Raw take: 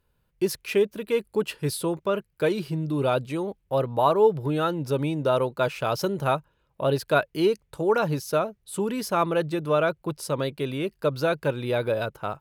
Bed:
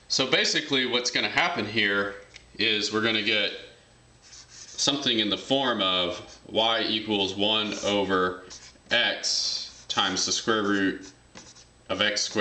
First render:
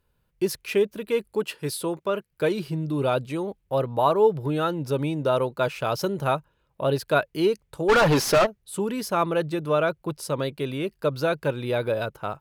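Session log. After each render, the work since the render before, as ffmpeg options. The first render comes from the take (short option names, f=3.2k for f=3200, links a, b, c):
-filter_complex "[0:a]asettb=1/sr,asplit=3[a][b][c];[a]atrim=end=1.344[d];[b]atrim=start=1.34:end=2.31,asetpts=PTS-STARTPTS,afade=t=in:d=0.004:c=qsin,afade=t=out:st=0.966:d=0.004:c=qsin,highpass=f=200:p=1[e];[c]atrim=start=2.306[f];[d][e]acrossfade=d=0.004:c1=hsin:c2=qsin[g];[g][f]acrossfade=d=0.004:c1=qsin:c2=hsin,asplit=3[h][i][j];[h]afade=t=out:st=7.88:d=0.02[k];[i]asplit=2[l][m];[m]highpass=f=720:p=1,volume=30dB,asoftclip=type=tanh:threshold=-11dB[n];[l][n]amix=inputs=2:normalize=0,lowpass=f=2.9k:p=1,volume=-6dB,afade=t=in:st=7.88:d=0.02,afade=t=out:st=8.45:d=0.02[o];[j]afade=t=in:st=8.45:d=0.02[p];[k][o][p]amix=inputs=3:normalize=0"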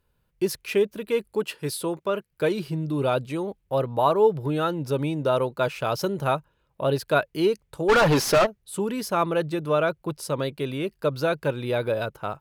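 -af anull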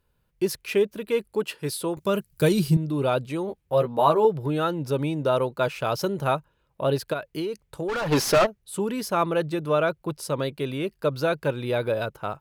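-filter_complex "[0:a]asettb=1/sr,asplit=3[a][b][c];[a]atrim=end=1.974[d];[b]atrim=start=1.97:end=2.77,asetpts=PTS-STARTPTS,afade=t=in:d=0.004:c=qsin,afade=t=out:st=0.796:d=0.004:c=qsin,bass=f=250:g=13,treble=f=4k:g=14[e];[c]atrim=start=2.766[f];[d][e]acrossfade=d=0.004:c1=hsin:c2=qsin[g];[g][f]acrossfade=d=0.004:c1=qsin:c2=hsin,asettb=1/sr,asplit=3[h][i][j];[h]atrim=end=3.484[k];[i]atrim=start=3.48:end=4.25,asetpts=PTS-STARTPTS,afade=t=in:d=0.004:c=qsin,afade=t=out:st=0.766:d=0.004:c=qsin,asplit=2[l][m];[m]adelay=13,volume=-4.5dB[n];[l][n]amix=inputs=2:normalize=0,atrim=end_sample=33957[o];[j]atrim=start=4.246[p];[k][o]acrossfade=d=0.004:c1=hsin:c2=qsin[q];[q][p]acrossfade=d=0.004:c1=qsin:c2=hsin,asplit=3[r][s][t];[r]afade=t=out:st=7.12:d=0.02[u];[s]acompressor=threshold=-25dB:ratio=10:attack=3.2:release=140:knee=1:detection=peak,afade=t=in:st=7.12:d=0.02,afade=t=out:st=8.11:d=0.02[v];[t]afade=t=in:st=8.11:d=0.02[w];[u][v][w]amix=inputs=3:normalize=0"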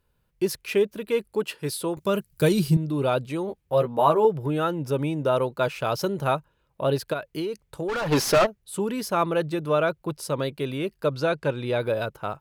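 -filter_complex "[0:a]asettb=1/sr,asplit=3[a][b][c];[a]atrim=end=3.854[d];[b]atrim=start=3.85:end=5.36,asetpts=PTS-STARTPTS,afade=t=in:d=0.004:c=qsin,afade=t=out:st=1.506:d=0.004:c=qsin,equalizer=f=4.2k:t=o:w=0.27:g=-8.5[e];[c]atrim=start=5.356[f];[d][e]acrossfade=d=0.004:c1=hsin:c2=qsin[g];[g][f]acrossfade=d=0.004:c1=qsin:c2=hsin,asettb=1/sr,asplit=3[h][i][j];[h]atrim=end=11.144[k];[i]atrim=start=11.14:end=11.8,asetpts=PTS-STARTPTS,afade=t=in:d=0.004:c=qsin,afade=t=out:st=0.656:d=0.004:c=qsin,lowpass=9.2k[l];[j]atrim=start=11.796[m];[k][l]acrossfade=d=0.004:c1=hsin:c2=qsin[n];[n][m]acrossfade=d=0.004:c1=qsin:c2=hsin"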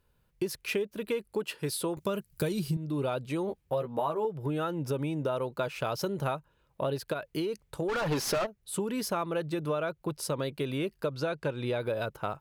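-af "acompressor=threshold=-28dB:ratio=6"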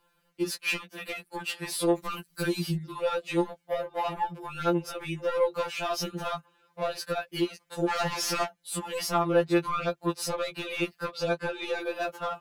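-filter_complex "[0:a]asplit=2[a][b];[b]highpass=f=720:p=1,volume=17dB,asoftclip=type=tanh:threshold=-16.5dB[c];[a][c]amix=inputs=2:normalize=0,lowpass=f=5.8k:p=1,volume=-6dB,afftfilt=real='re*2.83*eq(mod(b,8),0)':imag='im*2.83*eq(mod(b,8),0)':win_size=2048:overlap=0.75"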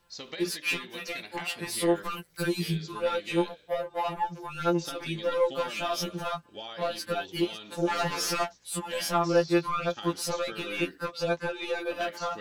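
-filter_complex "[1:a]volume=-18dB[a];[0:a][a]amix=inputs=2:normalize=0"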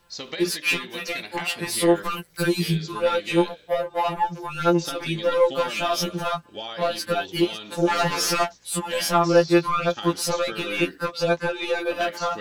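-af "volume=6.5dB"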